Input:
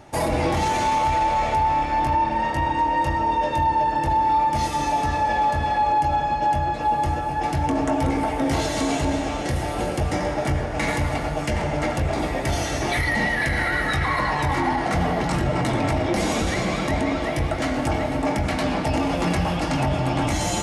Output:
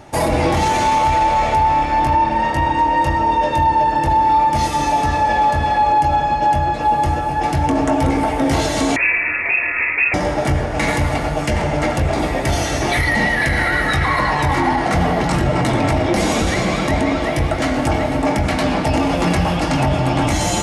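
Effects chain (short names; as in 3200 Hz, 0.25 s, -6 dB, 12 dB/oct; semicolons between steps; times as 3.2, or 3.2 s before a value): 8.96–10.14 inverted band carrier 2600 Hz; gain +5.5 dB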